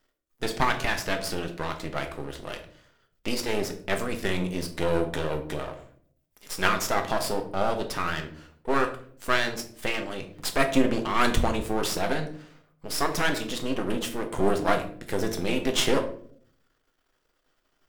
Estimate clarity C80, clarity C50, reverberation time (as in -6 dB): 14.5 dB, 11.0 dB, 0.55 s